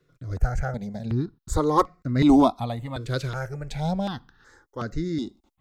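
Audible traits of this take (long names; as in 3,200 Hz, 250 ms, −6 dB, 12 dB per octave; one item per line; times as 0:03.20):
notches that jump at a steady rate 2.7 Hz 220–3,200 Hz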